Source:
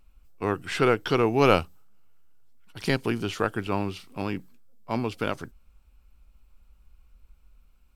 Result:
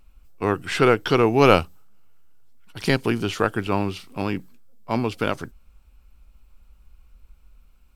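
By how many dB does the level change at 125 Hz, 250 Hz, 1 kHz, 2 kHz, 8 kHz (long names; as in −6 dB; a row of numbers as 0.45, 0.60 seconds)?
+4.5, +4.5, +4.5, +4.5, +4.5 decibels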